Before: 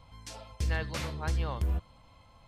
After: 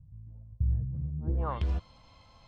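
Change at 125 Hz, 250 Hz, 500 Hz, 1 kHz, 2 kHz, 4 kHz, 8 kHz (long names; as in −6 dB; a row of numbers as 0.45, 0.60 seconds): +2.0 dB, +1.0 dB, −2.5 dB, −0.5 dB, −15.0 dB, −12.0 dB, below −20 dB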